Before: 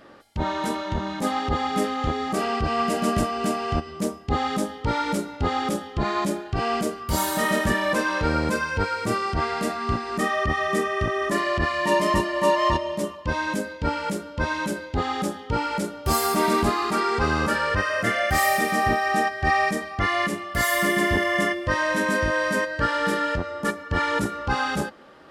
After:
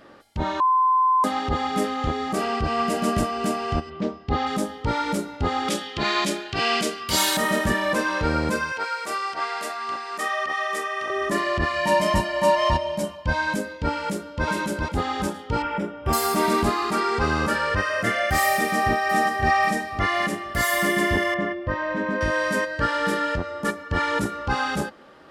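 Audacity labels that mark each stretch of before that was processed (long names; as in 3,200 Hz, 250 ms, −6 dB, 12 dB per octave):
0.600000	1.240000	beep over 1,030 Hz −15.5 dBFS
3.890000	4.450000	low-pass filter 3,500 Hz → 6,400 Hz 24 dB per octave
5.680000	7.370000	meter weighting curve D
8.720000	11.100000	high-pass filter 670 Hz
11.760000	13.560000	comb filter 1.3 ms, depth 59%
14.060000	14.470000	delay throw 410 ms, feedback 40%, level −2 dB
15.620000	16.130000	Savitzky-Golay smoothing over 25 samples
18.560000	19.380000	delay throw 530 ms, feedback 40%, level −7.5 dB
21.340000	22.210000	head-to-tape spacing loss at 10 kHz 33 dB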